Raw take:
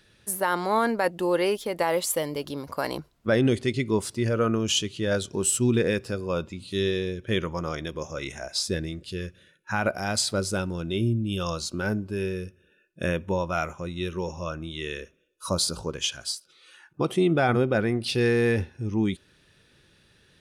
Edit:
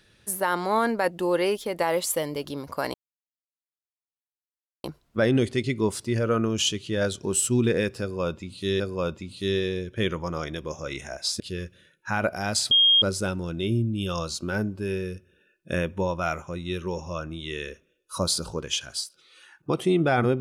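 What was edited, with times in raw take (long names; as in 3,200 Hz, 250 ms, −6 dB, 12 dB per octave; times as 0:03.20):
0:02.94: splice in silence 1.90 s
0:06.11–0:06.90: repeat, 2 plays
0:08.71–0:09.02: remove
0:10.33: insert tone 3,240 Hz −14.5 dBFS 0.31 s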